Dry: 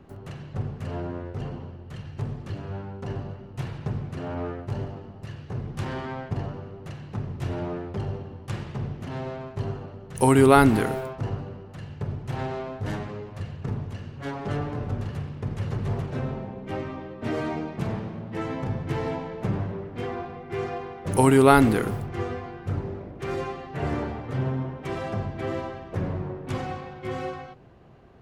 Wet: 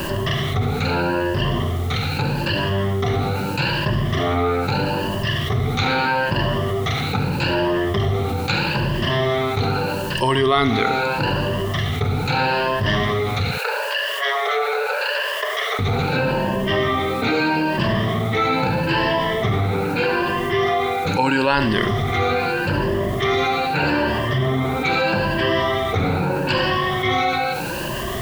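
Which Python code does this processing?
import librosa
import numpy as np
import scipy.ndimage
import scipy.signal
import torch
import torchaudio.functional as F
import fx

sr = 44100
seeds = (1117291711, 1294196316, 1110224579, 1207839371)

y = fx.spec_ripple(x, sr, per_octave=1.3, drift_hz=0.79, depth_db=17)
y = fx.ladder_lowpass(y, sr, hz=4900.0, resonance_pct=40)
y = fx.rider(y, sr, range_db=4, speed_s=0.5)
y = fx.cheby_ripple_highpass(y, sr, hz=420.0, ripple_db=6, at=(13.51, 15.79))
y = y + 10.0 ** (-13.5 / 20.0) * np.pad(y, (int(71 * sr / 1000.0), 0))[:len(y)]
y = fx.quant_dither(y, sr, seeds[0], bits=12, dither='triangular')
y = fx.tilt_shelf(y, sr, db=-5.0, hz=800.0)
y = fx.env_flatten(y, sr, amount_pct=70)
y = F.gain(torch.from_numpy(y), 5.5).numpy()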